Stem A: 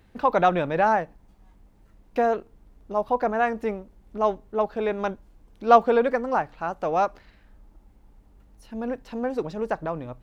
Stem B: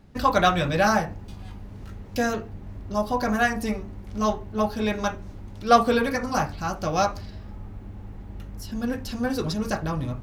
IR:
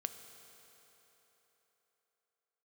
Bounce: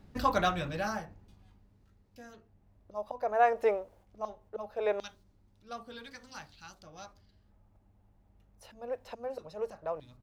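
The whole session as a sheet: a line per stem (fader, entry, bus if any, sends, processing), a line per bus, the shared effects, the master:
−1.0 dB, 0.00 s, no send, volume swells 575 ms; auto-filter high-pass square 0.2 Hz 550–4,200 Hz; noise gate −59 dBFS, range −15 dB
−3.5 dB, 0.5 ms, no send, automatic ducking −23 dB, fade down 1.90 s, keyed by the first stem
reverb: not used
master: no processing

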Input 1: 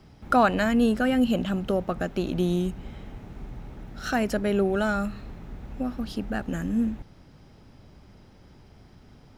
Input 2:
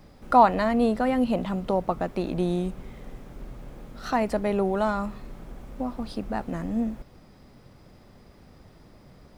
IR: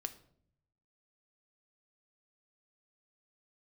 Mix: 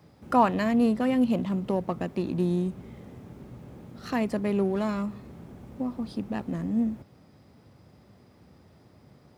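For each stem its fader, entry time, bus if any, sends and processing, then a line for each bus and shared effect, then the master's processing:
−5.5 dB, 0.00 s, no send, adaptive Wiener filter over 25 samples
−5.0 dB, 0.00 s, no send, no processing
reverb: not used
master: high-pass filter 75 Hz 24 dB per octave

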